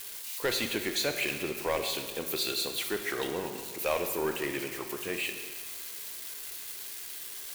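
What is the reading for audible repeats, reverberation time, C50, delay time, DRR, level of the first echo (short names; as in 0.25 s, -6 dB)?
none, 1.7 s, 7.0 dB, none, 5.5 dB, none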